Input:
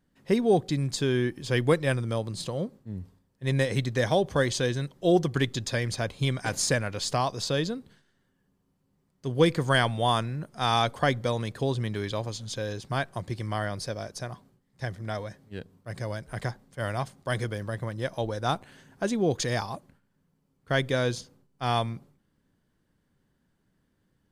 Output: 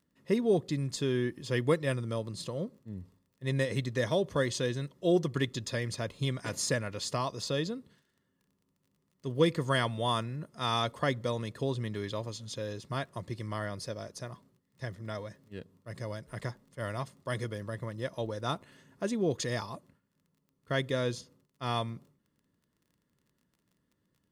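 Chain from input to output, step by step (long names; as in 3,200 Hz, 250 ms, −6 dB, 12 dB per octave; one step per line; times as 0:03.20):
surface crackle 22 per second −49 dBFS
notch comb filter 780 Hz
level −4 dB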